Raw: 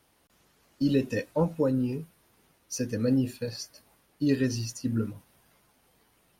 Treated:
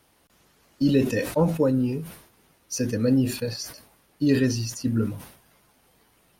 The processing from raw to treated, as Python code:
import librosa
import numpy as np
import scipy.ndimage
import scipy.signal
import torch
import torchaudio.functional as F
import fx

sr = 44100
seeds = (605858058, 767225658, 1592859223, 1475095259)

y = fx.sustainer(x, sr, db_per_s=95.0)
y = y * librosa.db_to_amplitude(4.0)